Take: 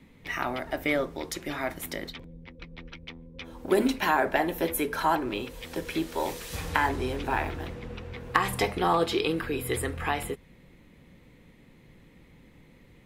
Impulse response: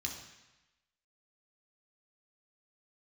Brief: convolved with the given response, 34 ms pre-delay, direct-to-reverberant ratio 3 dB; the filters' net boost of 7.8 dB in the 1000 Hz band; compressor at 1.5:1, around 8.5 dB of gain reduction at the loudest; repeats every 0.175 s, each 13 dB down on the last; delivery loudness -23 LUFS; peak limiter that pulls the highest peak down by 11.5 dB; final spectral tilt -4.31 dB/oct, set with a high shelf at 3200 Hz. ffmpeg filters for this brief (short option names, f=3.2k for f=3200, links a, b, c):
-filter_complex "[0:a]equalizer=f=1k:t=o:g=9,highshelf=f=3.2k:g=4.5,acompressor=threshold=-38dB:ratio=1.5,alimiter=limit=-20dB:level=0:latency=1,aecho=1:1:175|350|525:0.224|0.0493|0.0108,asplit=2[a][b];[1:a]atrim=start_sample=2205,adelay=34[c];[b][c]afir=irnorm=-1:irlink=0,volume=-3.5dB[d];[a][d]amix=inputs=2:normalize=0,volume=9dB"